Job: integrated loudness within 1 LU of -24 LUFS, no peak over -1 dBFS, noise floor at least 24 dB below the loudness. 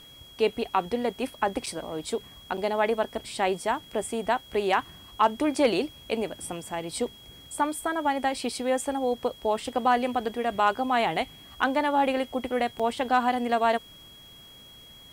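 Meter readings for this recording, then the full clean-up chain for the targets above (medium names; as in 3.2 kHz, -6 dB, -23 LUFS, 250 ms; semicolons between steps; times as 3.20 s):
dropouts 3; longest dropout 5.6 ms; steady tone 3.3 kHz; tone level -48 dBFS; loudness -27.5 LUFS; peak level -10.5 dBFS; loudness target -24.0 LUFS
-> interpolate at 1.66/2.57/12.79 s, 5.6 ms; band-stop 3.3 kHz, Q 30; trim +3.5 dB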